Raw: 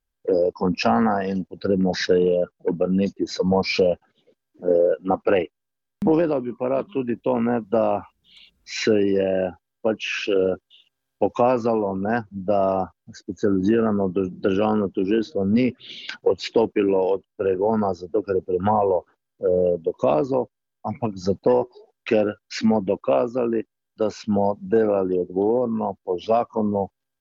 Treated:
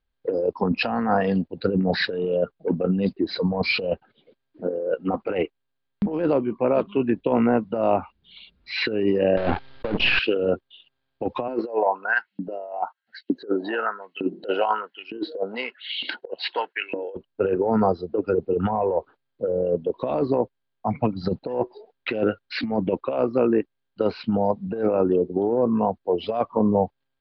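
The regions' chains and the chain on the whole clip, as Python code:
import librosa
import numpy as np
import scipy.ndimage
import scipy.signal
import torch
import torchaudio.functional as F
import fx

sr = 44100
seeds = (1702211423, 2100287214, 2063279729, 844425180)

y = fx.chain(x, sr, fx.halfwave_gain(db=-12.0),
    fx.leveller(passes=3),
    fx.sustainer(db_per_s=77.0), at=(9.37, 10.19))
y = fx.chain(y, sr, fx.filter_lfo_highpass(shape='saw_up', hz=1.1, low_hz=260.0, high_hz=3000.0, q=3.1),
    fx.notch_comb(f0_hz=1200.0), at=(11.48, 17.15))
y = scipy.signal.sosfilt(scipy.signal.butter(12, 4600.0, 'lowpass', fs=sr, output='sos'), y)
y = fx.over_compress(y, sr, threshold_db=-21.0, ratio=-0.5)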